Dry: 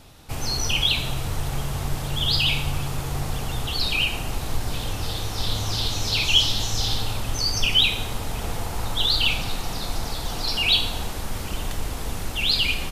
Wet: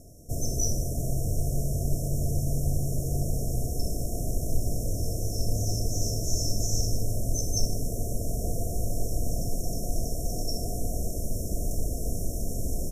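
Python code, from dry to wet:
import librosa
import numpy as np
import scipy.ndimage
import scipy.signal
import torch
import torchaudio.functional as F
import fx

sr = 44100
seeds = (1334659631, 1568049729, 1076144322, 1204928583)

y = fx.brickwall_bandstop(x, sr, low_hz=730.0, high_hz=5300.0)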